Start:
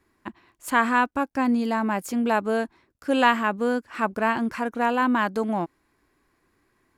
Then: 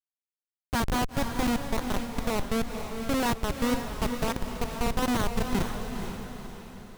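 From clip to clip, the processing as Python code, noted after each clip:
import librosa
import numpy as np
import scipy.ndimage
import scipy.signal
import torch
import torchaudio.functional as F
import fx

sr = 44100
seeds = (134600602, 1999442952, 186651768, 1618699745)

y = fx.schmitt(x, sr, flips_db=-18.5)
y = fx.echo_diffused(y, sr, ms=483, feedback_pct=48, wet_db=-6.0)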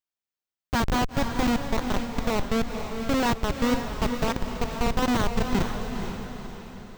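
y = fx.peak_eq(x, sr, hz=11000.0, db=-14.5, octaves=0.46)
y = y * 10.0 ** (3.0 / 20.0)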